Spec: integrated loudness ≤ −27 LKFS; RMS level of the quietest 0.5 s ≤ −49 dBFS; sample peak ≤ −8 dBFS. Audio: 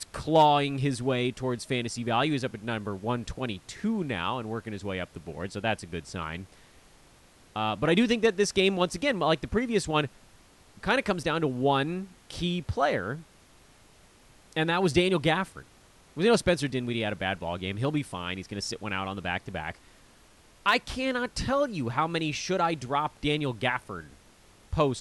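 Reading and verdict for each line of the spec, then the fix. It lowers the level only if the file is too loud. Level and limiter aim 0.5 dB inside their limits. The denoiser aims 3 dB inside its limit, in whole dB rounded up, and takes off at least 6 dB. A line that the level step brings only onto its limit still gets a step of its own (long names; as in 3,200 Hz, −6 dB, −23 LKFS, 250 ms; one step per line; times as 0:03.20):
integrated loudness −28.5 LKFS: in spec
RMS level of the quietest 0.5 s −57 dBFS: in spec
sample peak −11.5 dBFS: in spec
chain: no processing needed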